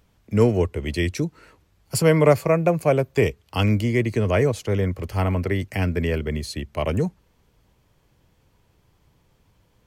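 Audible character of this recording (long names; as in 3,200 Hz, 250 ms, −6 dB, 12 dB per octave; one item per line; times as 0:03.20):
background noise floor −64 dBFS
spectral slope −6.5 dB per octave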